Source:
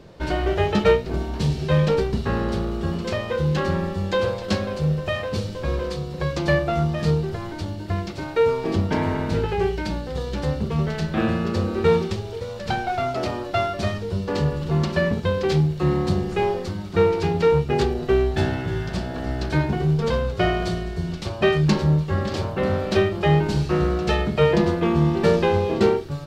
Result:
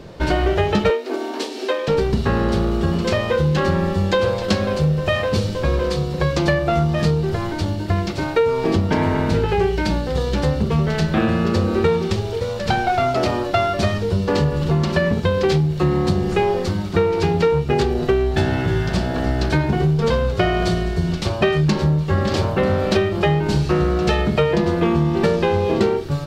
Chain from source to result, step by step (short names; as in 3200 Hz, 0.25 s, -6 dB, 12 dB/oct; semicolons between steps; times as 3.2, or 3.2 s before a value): compressor 10:1, threshold -21 dBFS, peak gain reduction 10 dB; 0.9–1.88 steep high-pass 250 Hz 72 dB/oct; gain +7.5 dB